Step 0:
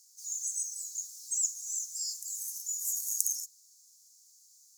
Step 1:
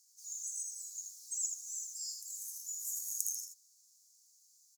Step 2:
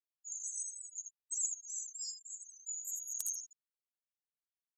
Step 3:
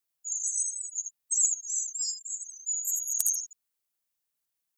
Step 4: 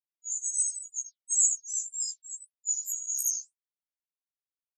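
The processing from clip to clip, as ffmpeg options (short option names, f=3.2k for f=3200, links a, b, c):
-af "aecho=1:1:80:0.531,volume=-7dB"
-af "afftfilt=real='re*gte(hypot(re,im),0.0178)':imag='im*gte(hypot(re,im),0.0178)':win_size=1024:overlap=0.75,areverse,acompressor=mode=upward:threshold=-54dB:ratio=2.5,areverse,asoftclip=type=hard:threshold=-24.5dB,volume=1dB"
-af "highshelf=f=6.7k:g=9.5,volume=6dB"
-af "afftfilt=real='re*gte(hypot(re,im),0.126)':imag='im*gte(hypot(re,im),0.126)':win_size=1024:overlap=0.75,flanger=delay=1.2:depth=6.4:regen=85:speed=1.9:shape=triangular,afftfilt=real='re*1.73*eq(mod(b,3),0)':imag='im*1.73*eq(mod(b,3),0)':win_size=2048:overlap=0.75,volume=8.5dB"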